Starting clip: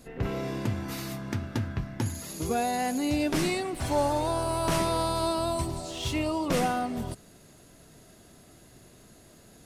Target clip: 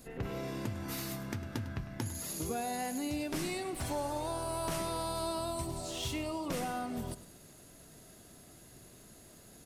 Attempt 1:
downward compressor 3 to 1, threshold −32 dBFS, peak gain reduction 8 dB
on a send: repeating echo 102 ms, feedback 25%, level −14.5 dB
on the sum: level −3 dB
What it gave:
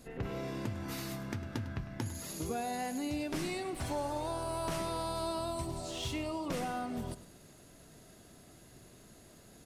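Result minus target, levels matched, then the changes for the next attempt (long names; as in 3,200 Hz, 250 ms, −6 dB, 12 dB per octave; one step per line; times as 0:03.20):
8,000 Hz band −3.0 dB
add after downward compressor: high-shelf EQ 8,900 Hz +8 dB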